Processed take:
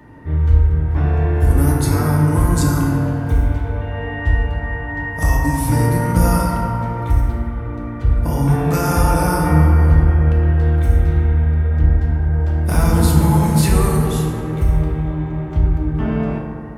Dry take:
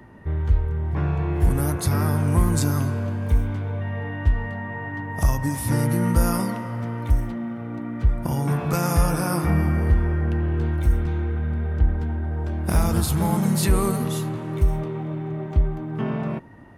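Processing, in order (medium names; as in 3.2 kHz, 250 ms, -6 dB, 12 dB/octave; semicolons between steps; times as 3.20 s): FDN reverb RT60 2.4 s, low-frequency decay 1.05×, high-frequency decay 0.35×, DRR -3 dB; trim +1 dB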